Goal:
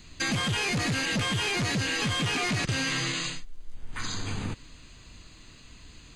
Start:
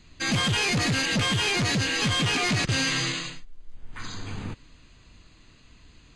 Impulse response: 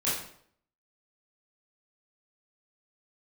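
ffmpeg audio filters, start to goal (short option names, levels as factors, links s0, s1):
-filter_complex "[0:a]acrossover=split=2900[s0][s1];[s1]acompressor=threshold=0.02:ratio=4:attack=1:release=60[s2];[s0][s2]amix=inputs=2:normalize=0,highshelf=f=6000:g=9.5,acompressor=threshold=0.0355:ratio=6,volume=1.41"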